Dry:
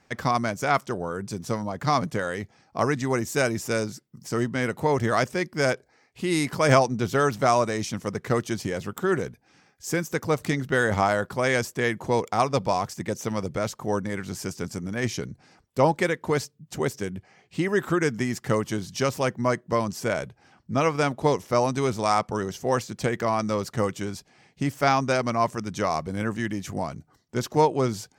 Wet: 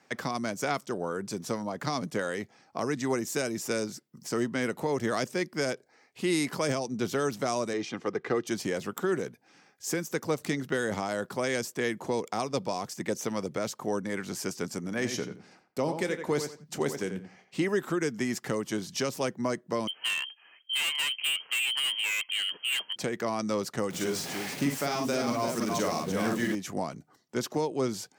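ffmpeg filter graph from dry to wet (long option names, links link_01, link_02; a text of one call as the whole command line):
ffmpeg -i in.wav -filter_complex "[0:a]asettb=1/sr,asplit=3[link_01][link_02][link_03];[link_01]atrim=end=7.734[link_04];[link_02]atrim=start=7.73:end=8.47,asetpts=PTS-STARTPTS,afade=type=in:duration=0.004:curve=qsin,afade=type=out:start_time=0.736:duration=0.004:curve=qsin,highpass=130,lowpass=3500,aecho=1:1:2.5:0.42,atrim=end_sample=32634[link_05];[link_03]atrim=start=8.466[link_06];[link_04][link_05]acrossfade=duration=0.004:curve1=hsin:curve2=qsin[link_07];[link_07][link_06]acrossfade=duration=0.004:curve1=qsin:curve2=hsin,asettb=1/sr,asplit=3[link_08][link_09][link_10];[link_08]atrim=end=14.894[link_11];[link_09]atrim=start=14.89:end=17.64,asetpts=PTS-STARTPTS,afade=type=in:duration=0.004:curve=qsin,afade=type=out:start_time=2.746:duration=0.004:curve=qsin,agate=range=-33dB:threshold=-56dB:ratio=3:release=100:detection=peak,asplit=2[link_12][link_13];[link_13]adelay=27,volume=-14dB[link_14];[link_12][link_14]amix=inputs=2:normalize=0,atrim=end_sample=121275,asplit=2[link_15][link_16];[link_16]adelay=87,lowpass=frequency=3300:poles=1,volume=-9dB,asplit=2[link_17][link_18];[link_18]adelay=87,lowpass=frequency=3300:poles=1,volume=0.21,asplit=2[link_19][link_20];[link_20]adelay=87,lowpass=frequency=3300:poles=1,volume=0.21[link_21];[link_15][link_17][link_19][link_21]amix=inputs=4:normalize=0,atrim=end_sample=121275[link_22];[link_10]atrim=start=17.636[link_23];[link_11][link_22]acrossfade=duration=0.004:curve1=hsin:curve2=qsin[link_24];[link_24][link_23]acrossfade=duration=0.004:curve1=qsin:curve2=hsin,asettb=1/sr,asplit=3[link_25][link_26][link_27];[link_25]atrim=end=19.874[link_28];[link_26]atrim=start=19.87:end=22.96,asetpts=PTS-STARTPTS,afade=type=in:duration=0.004:curve=qsin,afade=type=out:start_time=3.086:duration=0.004:curve=qsin,lowpass=frequency=2800:width_type=q:width=0.5098,lowpass=frequency=2800:width_type=q:width=0.6013,lowpass=frequency=2800:width_type=q:width=0.9,lowpass=frequency=2800:width_type=q:width=2.563,afreqshift=-3300,asoftclip=type=hard:threshold=-25dB[link_29];[link_27]atrim=start=22.956[link_30];[link_28][link_29]acrossfade=duration=0.004:curve1=hsin:curve2=qsin[link_31];[link_31][link_30]acrossfade=duration=0.004:curve1=qsin:curve2=hsin,asettb=1/sr,asplit=3[link_32][link_33][link_34];[link_32]atrim=end=23.904[link_35];[link_33]atrim=start=23.9:end=26.55,asetpts=PTS-STARTPTS,afade=type=in:duration=0.004:curve=qsin,afade=type=out:start_time=2.646:duration=0.004:curve=qsin,aeval=exprs='val(0)+0.5*0.02*sgn(val(0))':channel_layout=same,aecho=1:1:42|54|338:0.596|0.531|0.447,atrim=end_sample=116865[link_36];[link_34]atrim=start=26.546[link_37];[link_35][link_36]acrossfade=duration=0.004:curve1=hsin:curve2=qsin[link_38];[link_38][link_37]acrossfade=duration=0.004:curve1=qsin:curve2=hsin,highpass=200,acrossover=split=450|3000[link_39][link_40][link_41];[link_40]acompressor=threshold=-33dB:ratio=2.5[link_42];[link_39][link_42][link_41]amix=inputs=3:normalize=0,alimiter=limit=-18dB:level=0:latency=1:release=325" out.wav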